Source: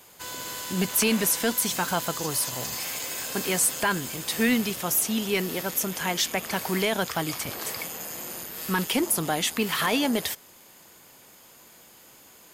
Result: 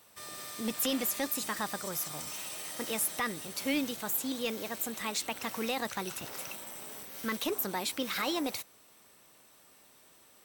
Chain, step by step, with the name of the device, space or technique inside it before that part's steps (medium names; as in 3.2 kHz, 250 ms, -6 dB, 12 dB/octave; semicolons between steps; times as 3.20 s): nightcore (tape speed +20%); trim -8 dB